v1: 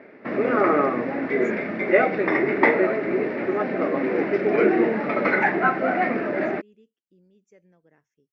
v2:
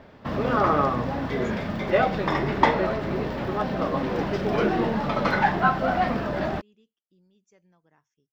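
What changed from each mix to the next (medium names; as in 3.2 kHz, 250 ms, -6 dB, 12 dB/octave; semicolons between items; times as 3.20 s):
background: remove cabinet simulation 270–4600 Hz, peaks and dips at 350 Hz +4 dB, 520 Hz -6 dB, 1.3 kHz +3 dB, 2.2 kHz +7 dB, 3.2 kHz -9 dB; master: add graphic EQ 250/500/1000/2000/4000 Hz -4/-9/+8/-7/+8 dB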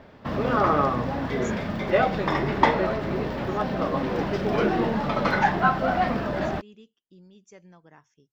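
speech +11.5 dB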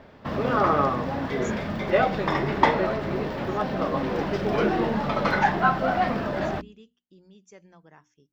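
master: add hum notches 60/120/180/240/300 Hz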